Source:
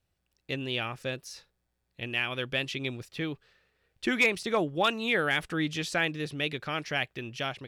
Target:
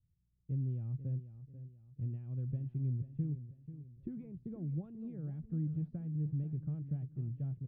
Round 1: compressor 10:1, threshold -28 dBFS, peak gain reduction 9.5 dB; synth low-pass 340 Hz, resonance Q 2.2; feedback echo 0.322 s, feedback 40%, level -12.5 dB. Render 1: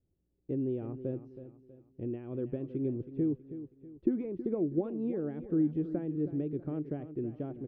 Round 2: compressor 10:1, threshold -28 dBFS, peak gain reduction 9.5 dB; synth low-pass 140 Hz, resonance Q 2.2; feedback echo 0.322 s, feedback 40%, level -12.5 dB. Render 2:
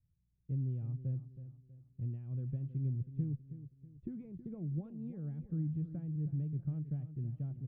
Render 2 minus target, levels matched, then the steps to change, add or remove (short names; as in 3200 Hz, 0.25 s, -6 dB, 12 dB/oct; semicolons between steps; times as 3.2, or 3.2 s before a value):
echo 0.167 s early
change: feedback echo 0.489 s, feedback 40%, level -12.5 dB